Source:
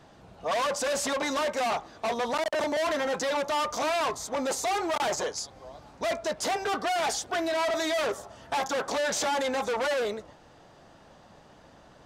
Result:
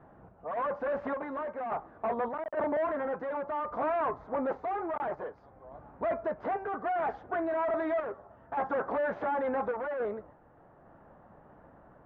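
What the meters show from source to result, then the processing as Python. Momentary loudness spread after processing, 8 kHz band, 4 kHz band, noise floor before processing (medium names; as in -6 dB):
8 LU, under -40 dB, under -25 dB, -55 dBFS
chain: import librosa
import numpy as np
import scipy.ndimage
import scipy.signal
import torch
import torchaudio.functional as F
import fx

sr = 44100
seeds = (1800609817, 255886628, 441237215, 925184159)

y = scipy.signal.sosfilt(scipy.signal.butter(4, 1600.0, 'lowpass', fs=sr, output='sos'), x)
y = fx.tremolo_random(y, sr, seeds[0], hz=3.5, depth_pct=55)
y = y * librosa.db_to_amplitude(-1.0)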